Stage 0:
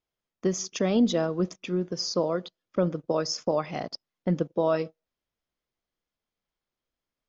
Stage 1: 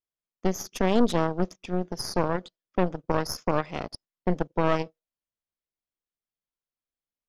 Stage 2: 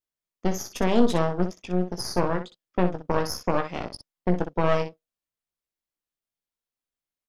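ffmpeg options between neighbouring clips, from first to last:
-af "agate=range=0.447:threshold=0.00447:ratio=16:detection=peak,aeval=exprs='0.224*(cos(1*acos(clip(val(0)/0.224,-1,1)))-cos(1*PI/2))+0.0316*(cos(3*acos(clip(val(0)/0.224,-1,1)))-cos(3*PI/2))+0.0631*(cos(4*acos(clip(val(0)/0.224,-1,1)))-cos(4*PI/2))':c=same"
-af "aecho=1:1:17|61:0.398|0.335"

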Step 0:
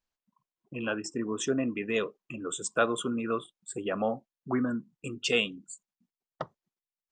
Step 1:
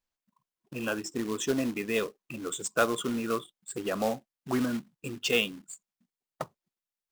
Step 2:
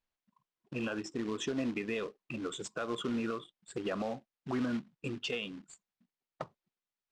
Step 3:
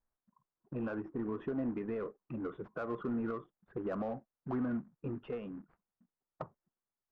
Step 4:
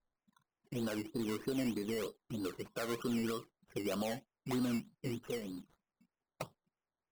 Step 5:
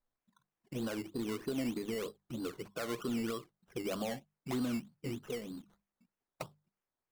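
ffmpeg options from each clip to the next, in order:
-af "acrusher=bits=3:mode=log:mix=0:aa=0.000001"
-af "lowpass=4300,acompressor=threshold=0.0316:ratio=2.5,alimiter=level_in=1.12:limit=0.0631:level=0:latency=1:release=83,volume=0.891"
-filter_complex "[0:a]lowpass=f=1500:w=0.5412,lowpass=f=1500:w=1.3066,asplit=2[s0][s1];[s1]asoftclip=type=tanh:threshold=0.0112,volume=0.708[s2];[s0][s2]amix=inputs=2:normalize=0,lowshelf=f=88:g=5.5,volume=0.631"
-af "acrusher=samples=14:mix=1:aa=0.000001:lfo=1:lforange=8.4:lforate=3.2"
-af "bandreject=f=50:t=h:w=6,bandreject=f=100:t=h:w=6,bandreject=f=150:t=h:w=6,bandreject=f=200:t=h:w=6"

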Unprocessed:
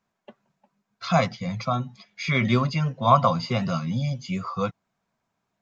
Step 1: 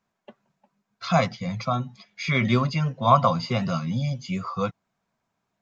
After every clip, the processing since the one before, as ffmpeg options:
-af anull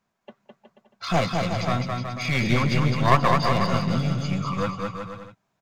-af "aeval=exprs='clip(val(0),-1,0.0422)':c=same,aecho=1:1:210|367.5|485.6|574.2|640.7:0.631|0.398|0.251|0.158|0.1,volume=1.19"

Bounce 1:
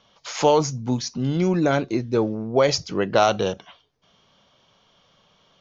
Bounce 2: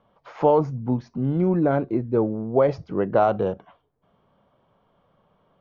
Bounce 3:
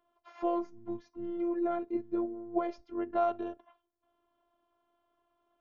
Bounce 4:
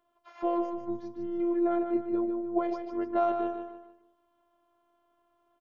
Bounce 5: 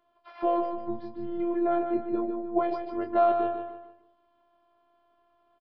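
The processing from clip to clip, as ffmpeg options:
-af "lowpass=1100"
-af "lowshelf=f=110:g=-8,afftfilt=real='hypot(re,im)*cos(PI*b)':imag='0':win_size=512:overlap=0.75,volume=0.447"
-af "aecho=1:1:151|302|453|604:0.422|0.16|0.0609|0.0231,volume=1.19"
-filter_complex "[0:a]aresample=11025,aresample=44100,asplit=2[s0][s1];[s1]adelay=22,volume=0.447[s2];[s0][s2]amix=inputs=2:normalize=0,volume=1.41"

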